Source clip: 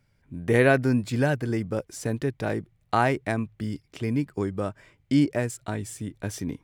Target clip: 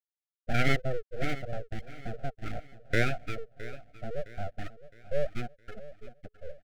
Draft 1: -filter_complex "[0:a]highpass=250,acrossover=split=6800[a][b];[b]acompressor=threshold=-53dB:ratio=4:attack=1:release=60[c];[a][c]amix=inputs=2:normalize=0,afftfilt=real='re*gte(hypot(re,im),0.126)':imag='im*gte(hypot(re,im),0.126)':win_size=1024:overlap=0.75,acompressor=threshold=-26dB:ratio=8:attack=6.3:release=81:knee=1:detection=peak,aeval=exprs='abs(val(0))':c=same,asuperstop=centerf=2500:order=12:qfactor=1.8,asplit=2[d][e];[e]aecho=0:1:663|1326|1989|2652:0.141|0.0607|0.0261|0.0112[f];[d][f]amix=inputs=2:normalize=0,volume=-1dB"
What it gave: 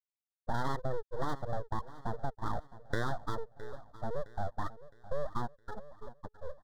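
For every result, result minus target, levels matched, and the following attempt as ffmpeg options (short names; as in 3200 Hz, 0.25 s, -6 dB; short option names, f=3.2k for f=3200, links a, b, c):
compressor: peak gain reduction +11 dB; 1000 Hz band +8.0 dB
-filter_complex "[0:a]highpass=250,acrossover=split=6800[a][b];[b]acompressor=threshold=-53dB:ratio=4:attack=1:release=60[c];[a][c]amix=inputs=2:normalize=0,afftfilt=real='re*gte(hypot(re,im),0.126)':imag='im*gte(hypot(re,im),0.126)':win_size=1024:overlap=0.75,aeval=exprs='abs(val(0))':c=same,asuperstop=centerf=2500:order=12:qfactor=1.8,asplit=2[d][e];[e]aecho=0:1:663|1326|1989|2652:0.141|0.0607|0.0261|0.0112[f];[d][f]amix=inputs=2:normalize=0,volume=-1dB"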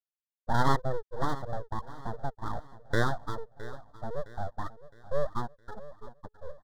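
1000 Hz band +7.5 dB
-filter_complex "[0:a]highpass=250,acrossover=split=6800[a][b];[b]acompressor=threshold=-53dB:ratio=4:attack=1:release=60[c];[a][c]amix=inputs=2:normalize=0,afftfilt=real='re*gte(hypot(re,im),0.126)':imag='im*gte(hypot(re,im),0.126)':win_size=1024:overlap=0.75,aeval=exprs='abs(val(0))':c=same,asuperstop=centerf=1000:order=12:qfactor=1.8,asplit=2[d][e];[e]aecho=0:1:663|1326|1989|2652:0.141|0.0607|0.0261|0.0112[f];[d][f]amix=inputs=2:normalize=0,volume=-1dB"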